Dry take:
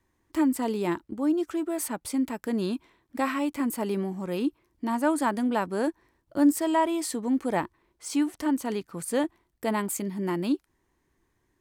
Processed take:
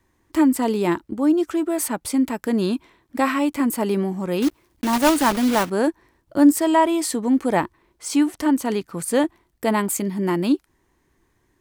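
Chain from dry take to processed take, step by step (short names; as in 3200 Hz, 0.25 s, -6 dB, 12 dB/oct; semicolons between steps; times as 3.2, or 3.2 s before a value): 4.42–5.7 block floating point 3-bit; gain +7 dB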